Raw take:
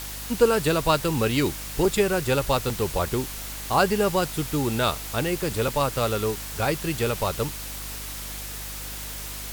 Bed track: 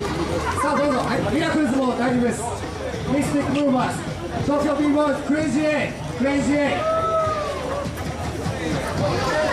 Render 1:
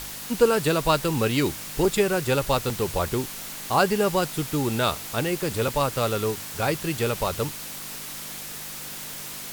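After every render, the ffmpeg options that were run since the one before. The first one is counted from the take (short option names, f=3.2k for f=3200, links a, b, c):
-af "bandreject=f=50:t=h:w=4,bandreject=f=100:t=h:w=4"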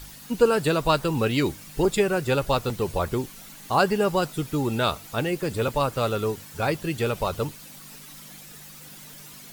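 -af "afftdn=nr=11:nf=-37"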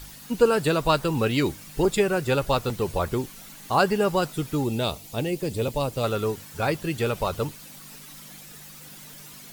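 -filter_complex "[0:a]asettb=1/sr,asplit=3[a][b][c];[a]atrim=end=4.644[d];[b]atrim=start=4.64:end=6.04,asetpts=PTS-STARTPTS,afade=t=in:d=0.004:c=qsin,afade=t=out:st=1.396:d=0.004:c=qsin,equalizer=f=1.4k:w=1.4:g=-12[e];[c]atrim=start=6.036[f];[d][e]acrossfade=d=0.004:c1=hsin:c2=qsin[g];[g][f]acrossfade=d=0.004:c1=qsin:c2=hsin"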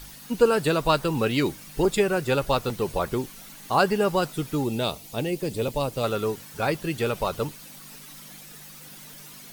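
-af "equalizer=f=82:t=o:w=0.68:g=-9,bandreject=f=7.3k:w=23"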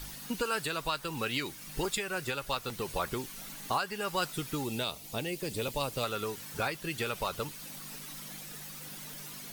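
-filter_complex "[0:a]acrossover=split=1100[a][b];[a]acompressor=threshold=-33dB:ratio=6[c];[c][b]amix=inputs=2:normalize=0,alimiter=limit=-19dB:level=0:latency=1:release=418"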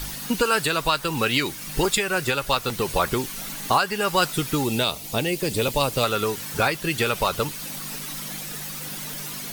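-af "volume=11dB"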